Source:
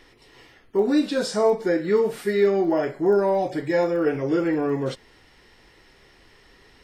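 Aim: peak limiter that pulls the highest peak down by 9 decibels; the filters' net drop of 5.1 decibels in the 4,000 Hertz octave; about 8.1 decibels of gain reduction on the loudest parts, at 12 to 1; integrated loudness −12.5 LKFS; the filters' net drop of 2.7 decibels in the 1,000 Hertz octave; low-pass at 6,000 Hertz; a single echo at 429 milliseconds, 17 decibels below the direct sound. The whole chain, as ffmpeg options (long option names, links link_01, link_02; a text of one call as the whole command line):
ffmpeg -i in.wav -af "lowpass=6000,equalizer=frequency=1000:width_type=o:gain=-3.5,equalizer=frequency=4000:width_type=o:gain=-5,acompressor=threshold=-23dB:ratio=12,alimiter=level_in=1.5dB:limit=-24dB:level=0:latency=1,volume=-1.5dB,aecho=1:1:429:0.141,volume=20.5dB" out.wav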